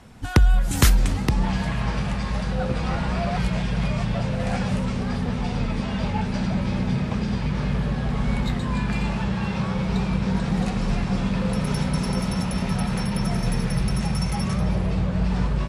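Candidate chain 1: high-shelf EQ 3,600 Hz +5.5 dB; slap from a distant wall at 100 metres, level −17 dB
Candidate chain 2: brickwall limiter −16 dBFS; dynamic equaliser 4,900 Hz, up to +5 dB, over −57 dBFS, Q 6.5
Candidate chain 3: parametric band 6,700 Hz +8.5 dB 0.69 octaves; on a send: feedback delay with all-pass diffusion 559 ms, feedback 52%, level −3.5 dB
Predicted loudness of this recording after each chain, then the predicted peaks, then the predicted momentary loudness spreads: −24.0, −26.0, −22.0 LKFS; −3.5, −14.5, −3.0 dBFS; 4, 1, 5 LU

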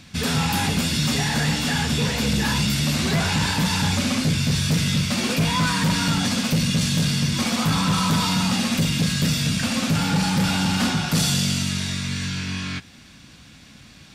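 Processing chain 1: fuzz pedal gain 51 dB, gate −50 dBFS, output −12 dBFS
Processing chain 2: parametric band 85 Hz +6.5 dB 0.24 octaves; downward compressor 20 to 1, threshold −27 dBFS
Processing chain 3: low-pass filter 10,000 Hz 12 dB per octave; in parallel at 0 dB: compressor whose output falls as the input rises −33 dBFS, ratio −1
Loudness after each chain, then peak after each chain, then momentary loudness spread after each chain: −13.0, −30.0, −19.5 LKFS; −9.5, −19.0, −10.0 dBFS; 1, 2, 3 LU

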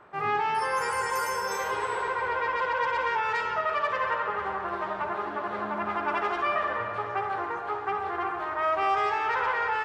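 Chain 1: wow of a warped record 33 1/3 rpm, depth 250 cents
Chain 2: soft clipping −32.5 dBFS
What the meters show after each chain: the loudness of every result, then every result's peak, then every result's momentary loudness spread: −28.5, −35.0 LKFS; −17.0, −32.5 dBFS; 5, 2 LU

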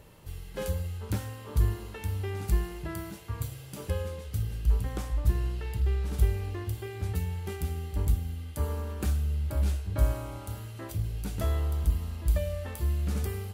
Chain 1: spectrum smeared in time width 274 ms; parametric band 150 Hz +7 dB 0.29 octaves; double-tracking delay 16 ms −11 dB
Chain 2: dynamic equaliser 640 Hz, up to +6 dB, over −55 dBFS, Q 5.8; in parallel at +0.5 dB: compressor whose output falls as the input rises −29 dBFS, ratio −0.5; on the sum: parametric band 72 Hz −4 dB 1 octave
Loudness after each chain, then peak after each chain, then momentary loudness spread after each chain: −32.5, −29.0 LKFS; −18.5, −11.0 dBFS; 10, 4 LU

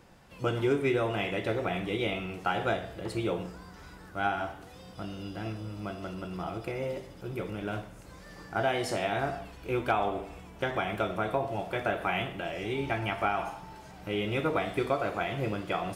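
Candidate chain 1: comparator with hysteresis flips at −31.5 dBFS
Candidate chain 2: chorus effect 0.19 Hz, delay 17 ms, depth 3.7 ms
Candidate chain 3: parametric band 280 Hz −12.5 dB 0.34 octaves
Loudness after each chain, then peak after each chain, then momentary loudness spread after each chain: −35.0, −35.0, −33.0 LKFS; −26.5, −14.5, −14.0 dBFS; 8, 14, 13 LU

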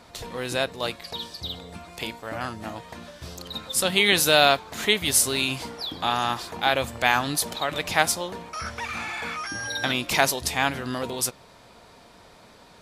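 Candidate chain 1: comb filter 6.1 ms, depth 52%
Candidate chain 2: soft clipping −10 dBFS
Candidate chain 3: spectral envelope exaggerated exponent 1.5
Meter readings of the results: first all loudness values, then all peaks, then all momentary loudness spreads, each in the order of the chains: −23.5, −25.5, −24.5 LKFS; −2.0, −10.0, −3.0 dBFS; 16, 15, 16 LU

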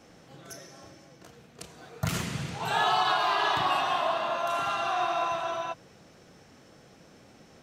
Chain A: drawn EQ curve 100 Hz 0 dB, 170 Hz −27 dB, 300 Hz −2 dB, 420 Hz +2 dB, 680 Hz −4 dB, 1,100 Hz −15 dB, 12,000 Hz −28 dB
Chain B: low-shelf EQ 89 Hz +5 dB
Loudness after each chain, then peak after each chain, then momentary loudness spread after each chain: −36.5, −28.0 LKFS; −22.5, −14.0 dBFS; 20, 20 LU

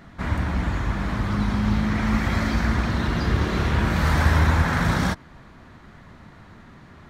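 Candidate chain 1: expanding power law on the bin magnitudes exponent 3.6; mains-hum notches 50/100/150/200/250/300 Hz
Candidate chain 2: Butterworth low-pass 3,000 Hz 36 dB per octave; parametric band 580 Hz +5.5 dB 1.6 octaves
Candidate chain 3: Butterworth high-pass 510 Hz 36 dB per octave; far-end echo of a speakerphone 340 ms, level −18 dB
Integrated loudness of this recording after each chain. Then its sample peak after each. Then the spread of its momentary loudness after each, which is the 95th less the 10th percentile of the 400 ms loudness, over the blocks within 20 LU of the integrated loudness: −25.0, −22.0, −29.0 LKFS; −11.5, −5.5, −14.0 dBFS; 9, 7, 8 LU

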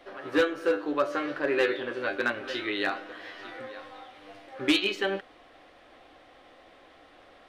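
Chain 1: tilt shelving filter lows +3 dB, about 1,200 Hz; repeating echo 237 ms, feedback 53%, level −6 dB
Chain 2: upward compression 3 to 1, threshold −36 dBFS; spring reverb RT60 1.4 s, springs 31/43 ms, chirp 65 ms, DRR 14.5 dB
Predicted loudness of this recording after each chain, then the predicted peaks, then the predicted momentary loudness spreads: −27.0, −29.0 LKFS; −12.5, −15.0 dBFS; 19, 19 LU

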